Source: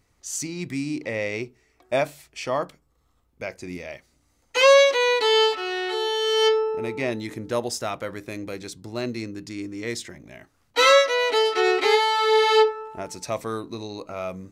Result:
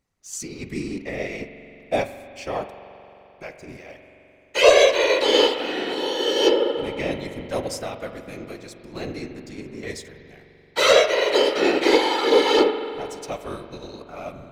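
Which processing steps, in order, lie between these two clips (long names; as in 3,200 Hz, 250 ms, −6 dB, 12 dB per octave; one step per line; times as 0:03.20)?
dynamic equaliser 1,200 Hz, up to −6 dB, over −34 dBFS, Q 1.3
leveller curve on the samples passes 1
random phases in short frames
spring reverb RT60 3.4 s, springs 43 ms, chirp 70 ms, DRR 5 dB
expander for the loud parts 1.5 to 1, over −31 dBFS
level +1 dB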